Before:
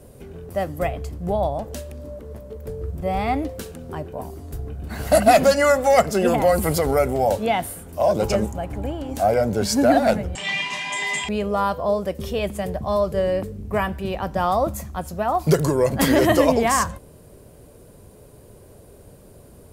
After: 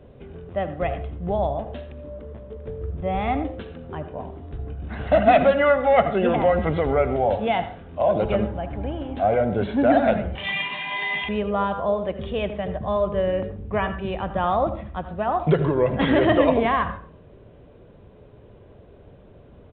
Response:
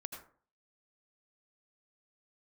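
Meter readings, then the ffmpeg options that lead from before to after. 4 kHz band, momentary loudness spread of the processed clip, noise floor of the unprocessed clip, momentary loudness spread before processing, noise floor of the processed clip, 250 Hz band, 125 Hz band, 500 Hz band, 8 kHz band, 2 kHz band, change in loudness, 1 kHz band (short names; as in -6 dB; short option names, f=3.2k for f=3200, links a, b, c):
-4.0 dB, 17 LU, -47 dBFS, 17 LU, -49 dBFS, -1.0 dB, -1.0 dB, -1.0 dB, under -40 dB, -1.0 dB, -1.5 dB, -1.0 dB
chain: -filter_complex "[0:a]asplit=2[a][b];[1:a]atrim=start_sample=2205,asetrate=48510,aresample=44100[c];[b][c]afir=irnorm=-1:irlink=0,volume=1.5dB[d];[a][d]amix=inputs=2:normalize=0,aresample=8000,aresample=44100,volume=-6dB"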